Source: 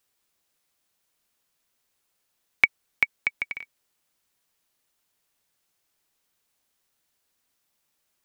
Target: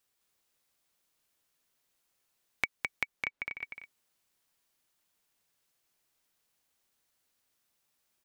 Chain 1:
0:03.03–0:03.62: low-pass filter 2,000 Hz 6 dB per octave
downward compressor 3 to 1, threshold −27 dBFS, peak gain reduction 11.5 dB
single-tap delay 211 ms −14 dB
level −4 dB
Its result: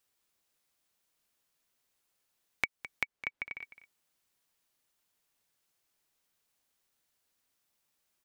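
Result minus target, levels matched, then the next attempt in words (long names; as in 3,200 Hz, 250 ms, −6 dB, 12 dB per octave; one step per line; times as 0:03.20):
echo-to-direct −10.5 dB
0:03.03–0:03.62: low-pass filter 2,000 Hz 6 dB per octave
downward compressor 3 to 1, threshold −27 dBFS, peak gain reduction 11.5 dB
single-tap delay 211 ms −3.5 dB
level −4 dB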